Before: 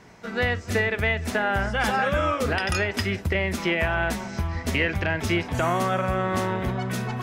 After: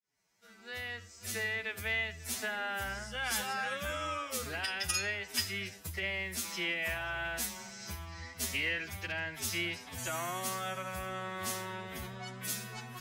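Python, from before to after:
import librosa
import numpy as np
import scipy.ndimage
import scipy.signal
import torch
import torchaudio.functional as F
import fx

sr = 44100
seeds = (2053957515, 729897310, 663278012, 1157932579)

y = fx.fade_in_head(x, sr, length_s=0.93)
y = F.preemphasis(torch.from_numpy(y), 0.9).numpy()
y = fx.stretch_vocoder(y, sr, factor=1.8)
y = y * librosa.db_to_amplitude(2.0)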